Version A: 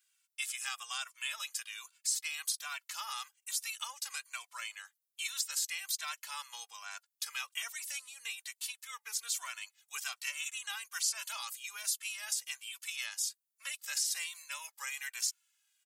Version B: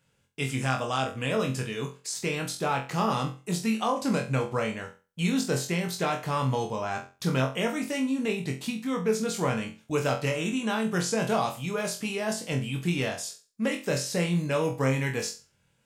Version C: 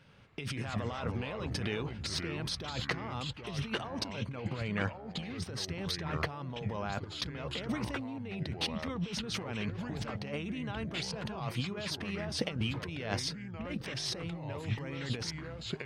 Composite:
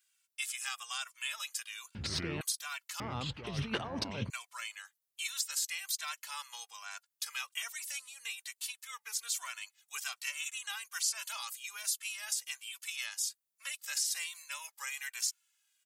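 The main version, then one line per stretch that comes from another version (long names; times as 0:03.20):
A
0:01.95–0:02.41: punch in from C
0:03.00–0:04.30: punch in from C
not used: B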